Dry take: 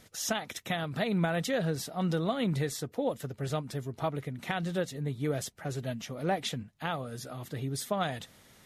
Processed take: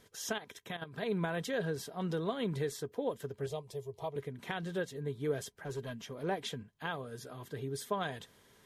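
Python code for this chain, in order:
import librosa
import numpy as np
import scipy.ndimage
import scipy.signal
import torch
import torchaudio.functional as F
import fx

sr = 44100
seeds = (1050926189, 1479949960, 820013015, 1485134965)

y = fx.level_steps(x, sr, step_db=11, at=(0.38, 1.03))
y = fx.fixed_phaser(y, sr, hz=620.0, stages=4, at=(3.46, 4.16))
y = fx.clip_hard(y, sr, threshold_db=-30.0, at=(5.54, 6.24))
y = fx.small_body(y, sr, hz=(420.0, 1000.0, 1600.0, 3200.0), ring_ms=45, db=11)
y = y * 10.0 ** (-7.0 / 20.0)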